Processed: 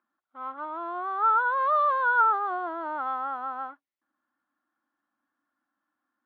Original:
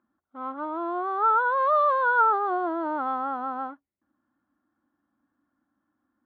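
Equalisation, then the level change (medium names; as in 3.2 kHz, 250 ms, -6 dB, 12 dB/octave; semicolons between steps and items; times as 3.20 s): band-pass filter 3.9 kHz, Q 0.65; distance through air 130 m; treble shelf 2.9 kHz -9 dB; +8.0 dB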